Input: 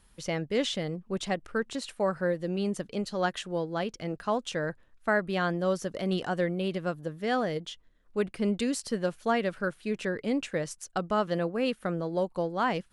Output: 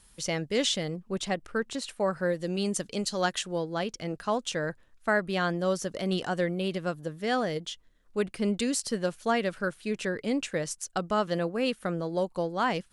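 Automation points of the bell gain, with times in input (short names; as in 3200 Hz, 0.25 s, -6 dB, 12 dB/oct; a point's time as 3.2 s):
bell 7700 Hz 2.1 oct
0.73 s +9 dB
1.25 s +3 dB
2.09 s +3 dB
2.51 s +13 dB
3.12 s +13 dB
3.64 s +6 dB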